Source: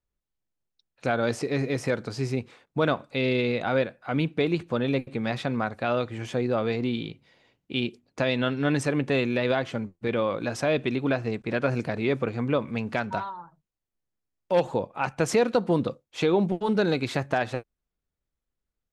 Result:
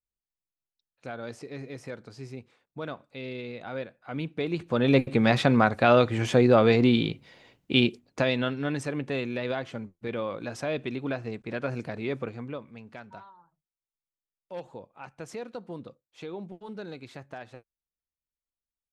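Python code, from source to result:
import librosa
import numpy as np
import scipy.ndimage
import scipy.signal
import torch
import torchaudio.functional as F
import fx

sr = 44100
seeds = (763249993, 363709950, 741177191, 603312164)

y = fx.gain(x, sr, db=fx.line((3.54, -12.5), (4.5, -5.0), (5.01, 7.0), (7.73, 7.0), (8.73, -6.0), (12.24, -6.0), (12.72, -16.0)))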